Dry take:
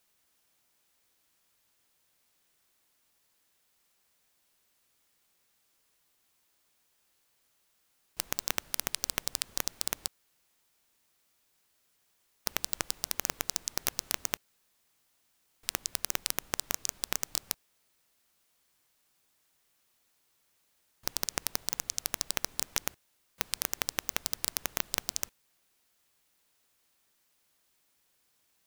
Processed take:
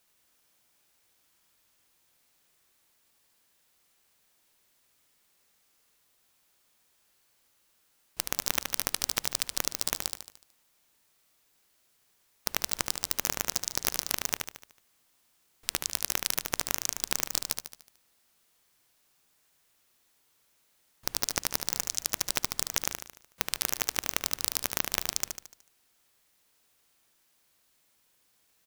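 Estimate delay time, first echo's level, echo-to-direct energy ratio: 74 ms, -6.0 dB, -5.0 dB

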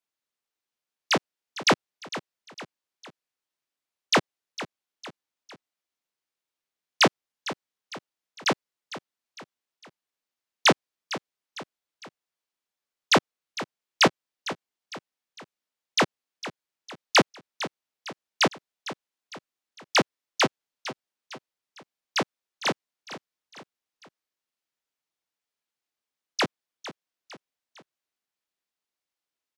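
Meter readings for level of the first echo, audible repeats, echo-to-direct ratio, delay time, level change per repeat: -14.0 dB, 3, -13.0 dB, 455 ms, -6.5 dB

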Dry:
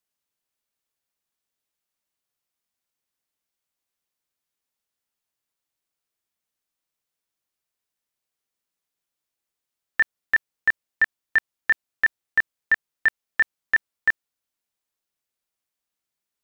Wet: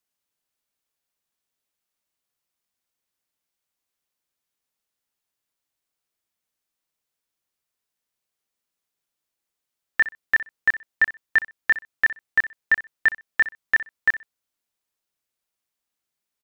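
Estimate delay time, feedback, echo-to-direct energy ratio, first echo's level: 63 ms, 18%, -15.5 dB, -15.5 dB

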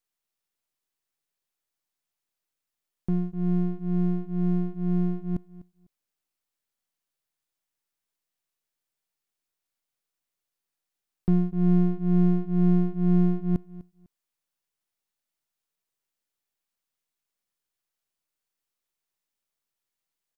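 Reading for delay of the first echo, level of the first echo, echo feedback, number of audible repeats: 250 ms, -18.5 dB, 21%, 2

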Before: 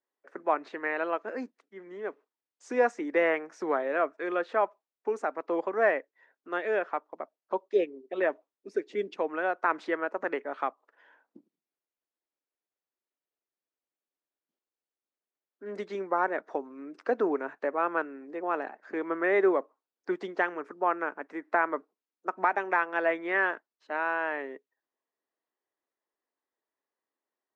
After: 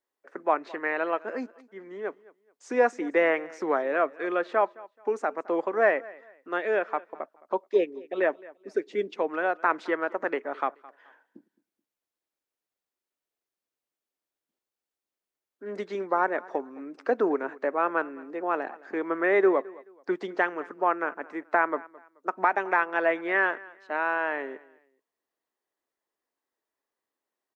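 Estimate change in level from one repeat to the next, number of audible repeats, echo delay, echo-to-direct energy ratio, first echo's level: -11.0 dB, 2, 215 ms, -21.0 dB, -21.5 dB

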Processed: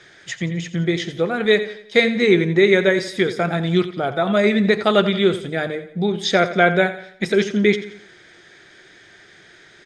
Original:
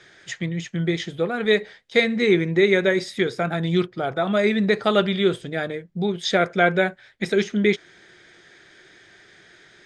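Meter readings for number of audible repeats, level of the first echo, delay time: 3, -13.5 dB, 87 ms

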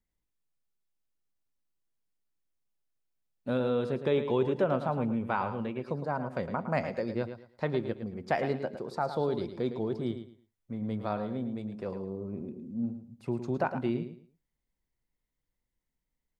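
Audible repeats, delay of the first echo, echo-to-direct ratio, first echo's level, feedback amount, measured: 3, 110 ms, -9.5 dB, -10.0 dB, 24%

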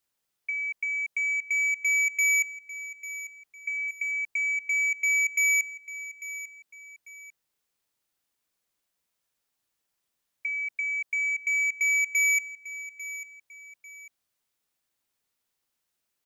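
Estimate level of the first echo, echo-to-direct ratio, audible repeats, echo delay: -14.0 dB, -13.5 dB, 2, 846 ms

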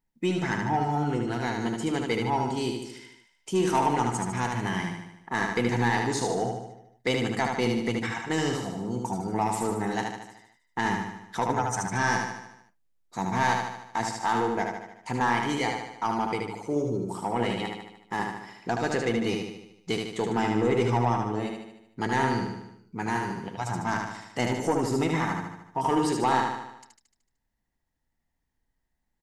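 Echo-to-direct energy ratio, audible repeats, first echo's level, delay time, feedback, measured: -2.5 dB, 6, -4.0 dB, 75 ms, 55%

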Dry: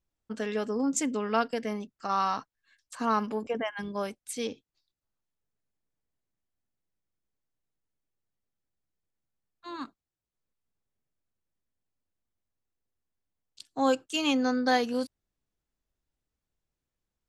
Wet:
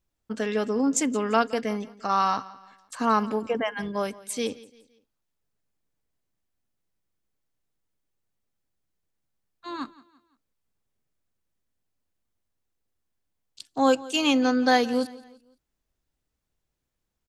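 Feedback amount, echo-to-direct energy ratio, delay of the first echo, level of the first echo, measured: 40%, -19.5 dB, 171 ms, -20.0 dB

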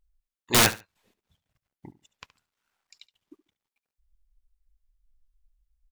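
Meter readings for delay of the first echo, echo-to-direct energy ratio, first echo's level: 71 ms, -17.0 dB, -17.0 dB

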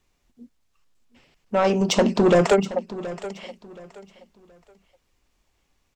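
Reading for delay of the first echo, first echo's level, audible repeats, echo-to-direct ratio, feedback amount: 724 ms, -15.5 dB, 2, -15.0 dB, 28%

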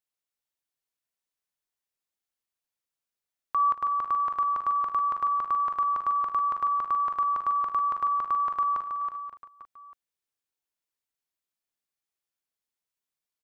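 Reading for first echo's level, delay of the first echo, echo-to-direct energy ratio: -13.5 dB, 54 ms, -5.0 dB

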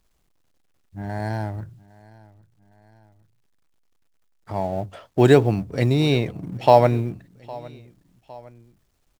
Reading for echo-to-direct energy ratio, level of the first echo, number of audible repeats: -21.0 dB, -22.0 dB, 2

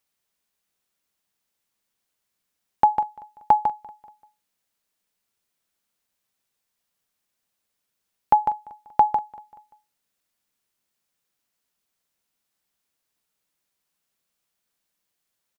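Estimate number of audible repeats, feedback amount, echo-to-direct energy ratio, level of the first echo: 3, 47%, -20.0 dB, -21.0 dB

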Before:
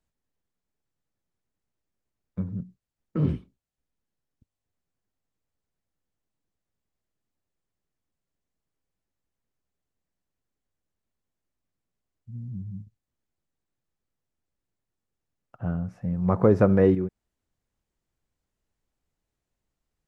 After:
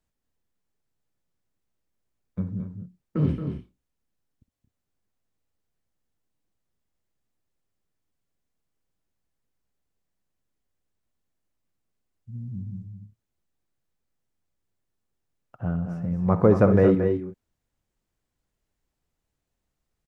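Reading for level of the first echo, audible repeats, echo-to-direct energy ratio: -15.5 dB, 2, -6.5 dB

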